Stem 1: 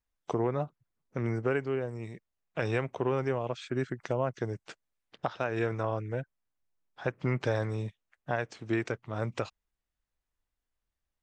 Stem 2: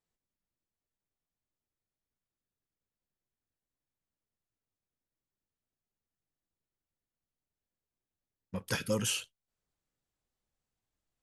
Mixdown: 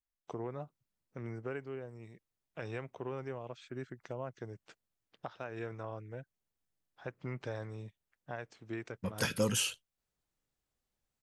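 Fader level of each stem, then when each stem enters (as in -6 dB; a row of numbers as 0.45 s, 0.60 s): -11.0 dB, +0.5 dB; 0.00 s, 0.50 s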